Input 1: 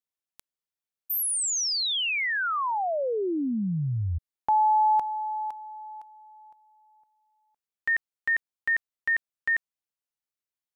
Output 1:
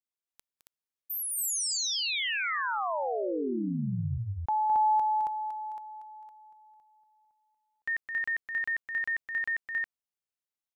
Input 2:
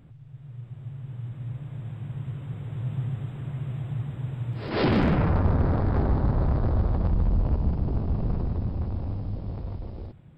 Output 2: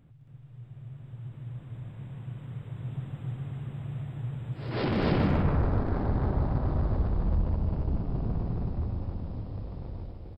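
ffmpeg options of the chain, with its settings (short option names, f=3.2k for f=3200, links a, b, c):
-af "aecho=1:1:212.8|274.1:0.447|0.891,volume=-6.5dB"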